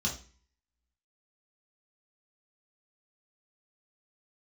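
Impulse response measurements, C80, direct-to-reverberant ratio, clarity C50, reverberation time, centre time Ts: 15.5 dB, -3.0 dB, 9.5 dB, 0.40 s, 21 ms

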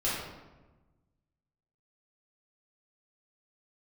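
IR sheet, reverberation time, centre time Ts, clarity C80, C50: 1.2 s, 75 ms, 2.5 dB, 0.0 dB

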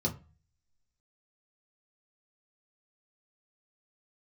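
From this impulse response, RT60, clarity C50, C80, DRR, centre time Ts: 0.35 s, 15.5 dB, 21.0 dB, -1.5 dB, 11 ms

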